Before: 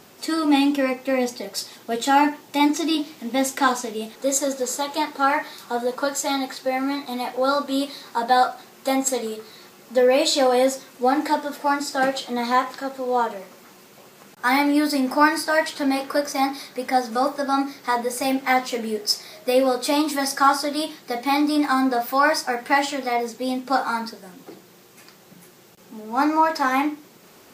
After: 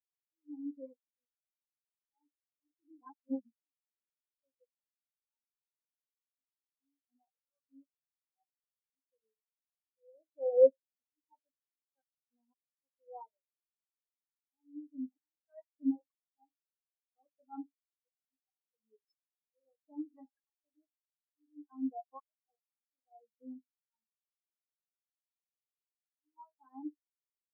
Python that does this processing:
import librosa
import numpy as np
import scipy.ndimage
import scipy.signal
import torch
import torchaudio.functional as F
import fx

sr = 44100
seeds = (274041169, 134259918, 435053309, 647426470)

y = fx.peak_eq(x, sr, hz=1100.0, db=3.0, octaves=0.77, at=(17.55, 20.45))
y = fx.edit(y, sr, fx.reverse_span(start_s=3.01, length_s=0.72), tone=tone)
y = fx.high_shelf(y, sr, hz=3500.0, db=-11.5)
y = fx.auto_swell(y, sr, attack_ms=778.0)
y = fx.spectral_expand(y, sr, expansion=4.0)
y = y * librosa.db_to_amplitude(-3.5)